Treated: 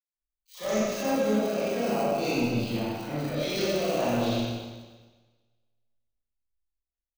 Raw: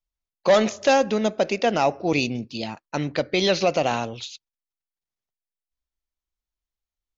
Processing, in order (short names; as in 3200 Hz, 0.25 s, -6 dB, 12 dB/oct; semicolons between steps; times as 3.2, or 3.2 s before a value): low-pass opened by the level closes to 1700 Hz, open at -18.5 dBFS; reverse; compressor 5:1, threshold -32 dBFS, peak gain reduction 16.5 dB; reverse; Schroeder reverb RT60 1.9 s, combs from 26 ms, DRR -9 dB; in parallel at -9 dB: sample-rate reducer 1800 Hz, jitter 0%; on the sum: three bands offset in time highs, mids, lows 90/130 ms, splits 970/3000 Hz; three-band expander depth 40%; gain -2.5 dB